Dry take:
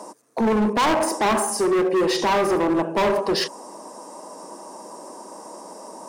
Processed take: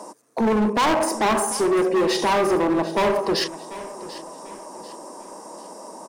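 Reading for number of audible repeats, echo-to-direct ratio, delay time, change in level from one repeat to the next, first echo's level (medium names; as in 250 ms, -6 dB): 3, -15.5 dB, 742 ms, -8.0 dB, -16.0 dB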